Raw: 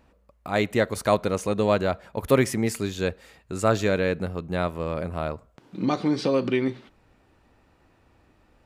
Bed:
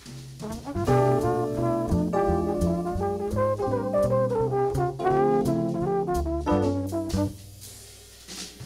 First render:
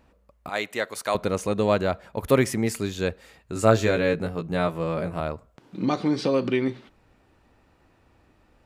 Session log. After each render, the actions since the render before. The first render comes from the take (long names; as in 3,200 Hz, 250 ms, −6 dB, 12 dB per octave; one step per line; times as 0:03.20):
0:00.49–0:01.15: high-pass filter 940 Hz 6 dB per octave
0:03.54–0:05.20: double-tracking delay 18 ms −3.5 dB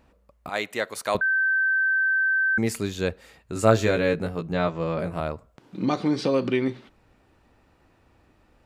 0:01.21–0:02.58: beep over 1,550 Hz −19 dBFS
0:04.52–0:04.99: Butterworth low-pass 7,300 Hz 72 dB per octave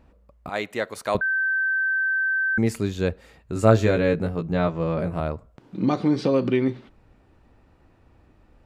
spectral tilt −1.5 dB per octave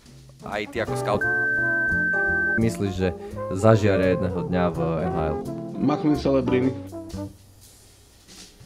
mix in bed −7 dB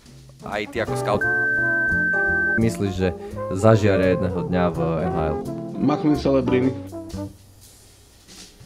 level +2 dB
brickwall limiter −3 dBFS, peak gain reduction 1.5 dB